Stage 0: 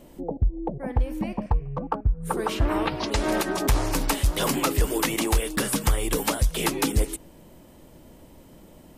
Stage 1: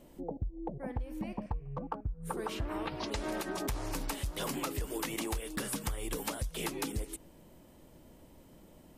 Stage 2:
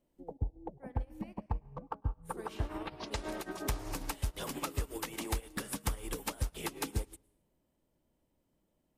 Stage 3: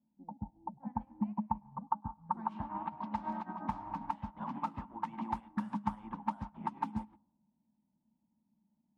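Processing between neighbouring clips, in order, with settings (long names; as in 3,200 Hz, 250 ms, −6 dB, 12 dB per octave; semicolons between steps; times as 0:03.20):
downward compressor 5 to 1, threshold −25 dBFS, peak gain reduction 8.5 dB; level −7.5 dB
convolution reverb RT60 1.0 s, pre-delay 99 ms, DRR 11.5 dB; expander for the loud parts 2.5 to 1, over −47 dBFS; level +3.5 dB
pair of resonant band-passes 440 Hz, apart 2.1 octaves; low-pass that shuts in the quiet parts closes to 460 Hz, open at −42.5 dBFS; level +11.5 dB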